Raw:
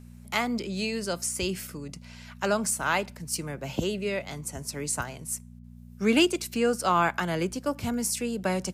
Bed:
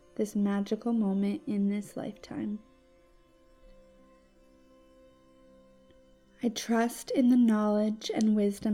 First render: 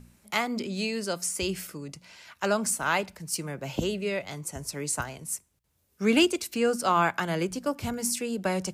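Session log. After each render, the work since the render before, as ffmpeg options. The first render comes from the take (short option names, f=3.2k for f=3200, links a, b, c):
-af "bandreject=f=60:t=h:w=4,bandreject=f=120:t=h:w=4,bandreject=f=180:t=h:w=4,bandreject=f=240:t=h:w=4"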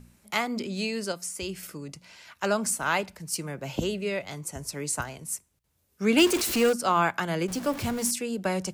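-filter_complex "[0:a]asettb=1/sr,asplit=3[a][b][c];[a]atrim=end=6.184[d];[b]atrim=start=6.18:end=6.73,asetpts=PTS-STARTPTS,afade=t=in:d=0.004:c=qsin,afade=t=out:st=0.546:d=0.004:c=qsin,aeval=exprs='val(0)+0.5*0.0562*sgn(val(0))':c=same[e];[c]atrim=start=6.726[f];[d][e]acrossfade=d=0.004:c1=hsin:c2=qsin[g];[g][f]acrossfade=d=0.004:c1=qsin:c2=hsin,asettb=1/sr,asplit=3[h][i][j];[h]atrim=end=7.484[k];[i]atrim=start=7.48:end=8.11,asetpts=PTS-STARTPTS,afade=t=in:d=0.004:c=qsin,afade=t=out:st=0.626:d=0.004:c=qsin,aeval=exprs='val(0)+0.5*0.0224*sgn(val(0))':c=same[l];[j]atrim=start=8.106[m];[k][l]acrossfade=d=0.004:c1=hsin:c2=qsin[n];[n][m]acrossfade=d=0.004:c1=qsin:c2=hsin,asplit=3[o][p][q];[o]atrim=end=1.122[r];[p]atrim=start=1.118:end=1.632,asetpts=PTS-STARTPTS,volume=-4.5dB[s];[q]atrim=start=1.628[t];[r][s]acrossfade=d=0.004:c1=hsin:c2=hsin[u];[u][t]acrossfade=d=0.004:c1=hsin:c2=hsin"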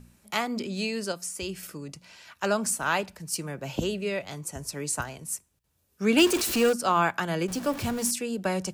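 -af "equalizer=f=2.1k:t=o:w=0.23:g=7,bandreject=f=2.1k:w=5.9"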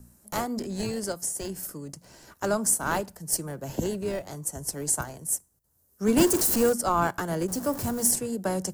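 -filter_complex "[0:a]acrossover=split=170|1700|4600[a][b][c][d];[c]acrusher=samples=35:mix=1:aa=0.000001[e];[d]crystalizer=i=1:c=0[f];[a][b][e][f]amix=inputs=4:normalize=0"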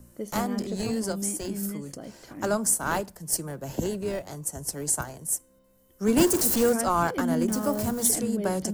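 -filter_complex "[1:a]volume=-4.5dB[a];[0:a][a]amix=inputs=2:normalize=0"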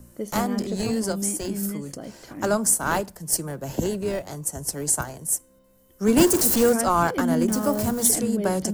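-af "volume=3.5dB"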